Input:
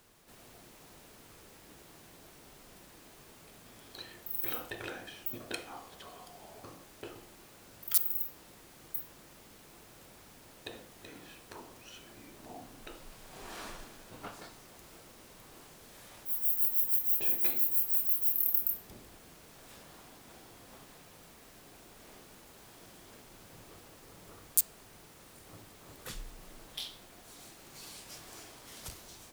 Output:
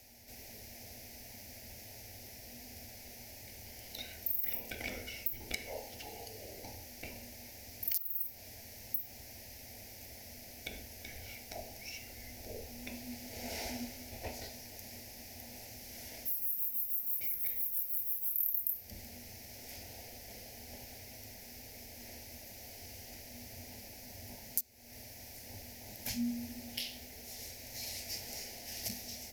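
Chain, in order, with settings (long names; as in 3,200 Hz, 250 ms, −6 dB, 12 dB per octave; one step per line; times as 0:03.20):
parametric band 440 Hz −13.5 dB 0.33 octaves
phaser with its sweep stopped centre 380 Hz, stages 6
downward compressor 5 to 1, threshold −40 dBFS, peak gain reduction 19 dB
EQ curve with evenly spaced ripples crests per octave 0.8, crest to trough 10 dB
frequency shifter −270 Hz
level +6.5 dB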